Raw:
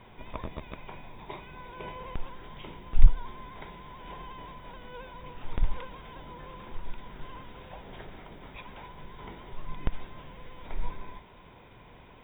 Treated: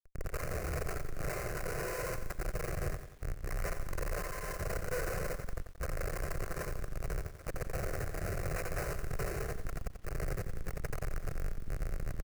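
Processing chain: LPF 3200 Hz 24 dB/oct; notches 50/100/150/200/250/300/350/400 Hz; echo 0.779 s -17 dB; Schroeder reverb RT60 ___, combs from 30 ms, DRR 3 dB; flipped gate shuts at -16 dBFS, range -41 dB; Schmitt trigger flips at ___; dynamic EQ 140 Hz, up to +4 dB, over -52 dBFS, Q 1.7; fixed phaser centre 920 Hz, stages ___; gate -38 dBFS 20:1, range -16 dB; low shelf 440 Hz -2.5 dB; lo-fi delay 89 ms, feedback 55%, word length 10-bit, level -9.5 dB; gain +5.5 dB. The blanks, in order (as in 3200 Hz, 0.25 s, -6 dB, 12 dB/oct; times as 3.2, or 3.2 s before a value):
1.3 s, -44 dBFS, 6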